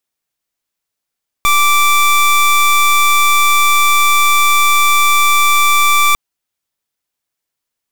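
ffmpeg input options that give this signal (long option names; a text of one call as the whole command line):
ffmpeg -f lavfi -i "aevalsrc='0.316*(2*lt(mod(1170*t,1),0.23)-1)':duration=4.7:sample_rate=44100" out.wav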